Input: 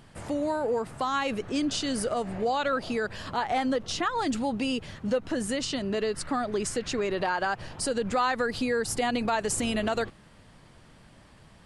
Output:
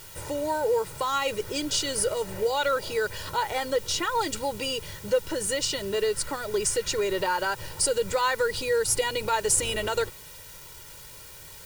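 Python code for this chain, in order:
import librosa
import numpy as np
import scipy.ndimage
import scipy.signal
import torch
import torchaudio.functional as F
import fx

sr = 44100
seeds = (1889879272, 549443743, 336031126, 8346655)

p1 = fx.high_shelf(x, sr, hz=5200.0, db=9.5)
p2 = fx.quant_dither(p1, sr, seeds[0], bits=6, dither='triangular')
p3 = p1 + (p2 * 10.0 ** (-8.0 / 20.0))
p4 = p3 + 0.86 * np.pad(p3, (int(2.1 * sr / 1000.0), 0))[:len(p3)]
y = p4 * 10.0 ** (-4.5 / 20.0)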